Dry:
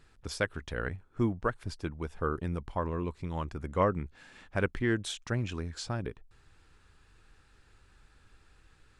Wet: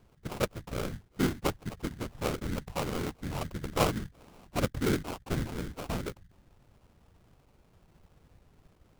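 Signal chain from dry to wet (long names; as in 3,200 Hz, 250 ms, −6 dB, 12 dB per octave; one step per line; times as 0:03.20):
random phases in short frames
sample-rate reduction 1,800 Hz, jitter 20%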